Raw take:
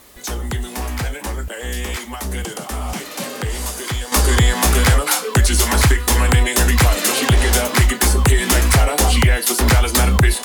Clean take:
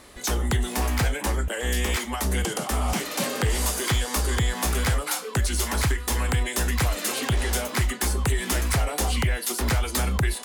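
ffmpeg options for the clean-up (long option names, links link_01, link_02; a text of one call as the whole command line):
ffmpeg -i in.wav -af "agate=range=-21dB:threshold=-22dB,asetnsamples=nb_out_samples=441:pad=0,asendcmd='4.12 volume volume -10dB',volume=0dB" out.wav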